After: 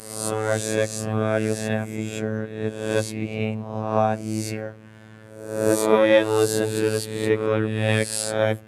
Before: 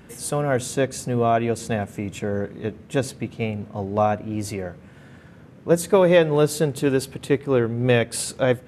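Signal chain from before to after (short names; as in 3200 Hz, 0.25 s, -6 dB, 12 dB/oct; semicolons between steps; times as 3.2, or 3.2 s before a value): spectral swells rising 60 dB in 0.80 s; robotiser 109 Hz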